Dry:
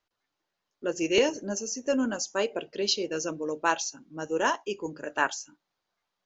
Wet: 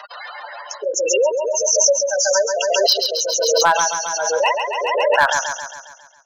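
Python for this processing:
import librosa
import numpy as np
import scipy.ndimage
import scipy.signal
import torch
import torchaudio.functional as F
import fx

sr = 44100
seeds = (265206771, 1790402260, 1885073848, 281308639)

p1 = fx.lower_of_two(x, sr, delay_ms=0.33, at=(4.34, 5.05))
p2 = fx.spec_gate(p1, sr, threshold_db=-10, keep='strong')
p3 = scipy.signal.sosfilt(scipy.signal.butter(8, 570.0, 'highpass', fs=sr, output='sos'), p2)
p4 = fx.rider(p3, sr, range_db=5, speed_s=0.5)
p5 = p3 + (p4 * 10.0 ** (-2.5 / 20.0))
p6 = np.clip(p5, -10.0 ** (-16.0 / 20.0), 10.0 ** (-16.0 / 20.0))
p7 = p6 + fx.echo_feedback(p6, sr, ms=136, feedback_pct=53, wet_db=-5.5, dry=0)
p8 = fx.pre_swell(p7, sr, db_per_s=22.0)
y = p8 * 10.0 ** (8.5 / 20.0)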